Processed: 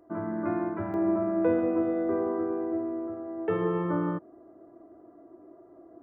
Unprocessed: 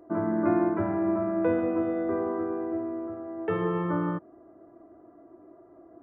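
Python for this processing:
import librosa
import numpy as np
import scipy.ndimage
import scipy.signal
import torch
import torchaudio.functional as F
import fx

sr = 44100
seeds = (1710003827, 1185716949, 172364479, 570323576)

y = fx.peak_eq(x, sr, hz=400.0, db=fx.steps((0.0, -3.0), (0.94, 4.0)), octaves=2.1)
y = y * librosa.db_to_amplitude(-3.0)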